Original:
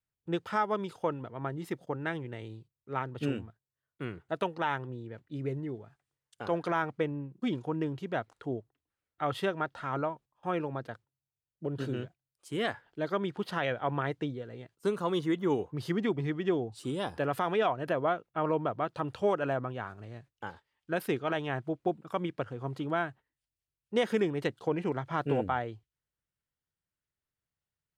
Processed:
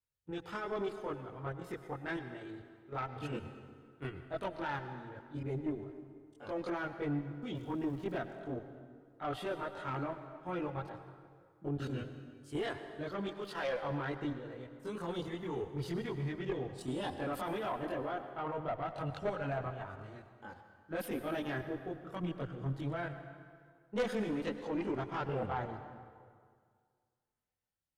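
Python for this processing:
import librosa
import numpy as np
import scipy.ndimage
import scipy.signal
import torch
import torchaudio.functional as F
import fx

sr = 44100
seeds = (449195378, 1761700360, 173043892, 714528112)

y = fx.bass_treble(x, sr, bass_db=-14, treble_db=3, at=(13.26, 13.82))
y = fx.level_steps(y, sr, step_db=12)
y = fx.chorus_voices(y, sr, voices=4, hz=0.15, base_ms=22, depth_ms=2.0, mix_pct=60)
y = fx.dmg_crackle(y, sr, seeds[0], per_s=590.0, level_db=-61.0, at=(7.54, 8.2), fade=0.02)
y = fx.tube_stage(y, sr, drive_db=32.0, bias=0.35)
y = fx.rev_plate(y, sr, seeds[1], rt60_s=2.0, hf_ratio=0.75, predelay_ms=85, drr_db=9.0)
y = F.gain(torch.from_numpy(y), 4.5).numpy()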